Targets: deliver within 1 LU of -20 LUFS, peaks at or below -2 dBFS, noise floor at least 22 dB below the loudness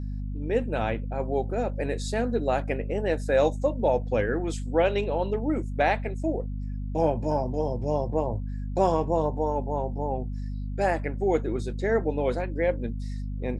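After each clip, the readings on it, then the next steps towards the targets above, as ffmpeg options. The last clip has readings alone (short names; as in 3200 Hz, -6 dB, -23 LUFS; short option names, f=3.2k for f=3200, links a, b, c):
hum 50 Hz; harmonics up to 250 Hz; hum level -29 dBFS; loudness -27.5 LUFS; peak -10.5 dBFS; loudness target -20.0 LUFS
-> -af "bandreject=f=50:t=h:w=6,bandreject=f=100:t=h:w=6,bandreject=f=150:t=h:w=6,bandreject=f=200:t=h:w=6,bandreject=f=250:t=h:w=6"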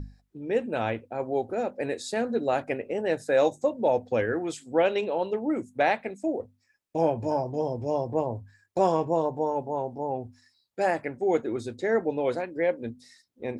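hum none; loudness -28.0 LUFS; peak -11.0 dBFS; loudness target -20.0 LUFS
-> -af "volume=8dB"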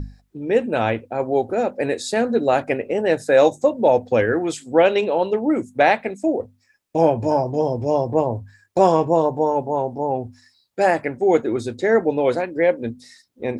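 loudness -20.0 LUFS; peak -3.0 dBFS; noise floor -63 dBFS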